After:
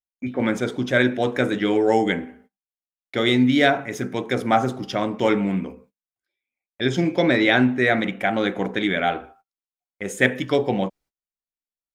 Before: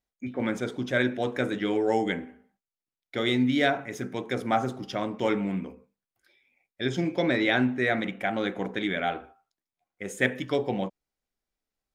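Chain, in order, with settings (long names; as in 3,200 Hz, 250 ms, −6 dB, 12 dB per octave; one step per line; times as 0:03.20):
noise gate −58 dBFS, range −25 dB
level +6.5 dB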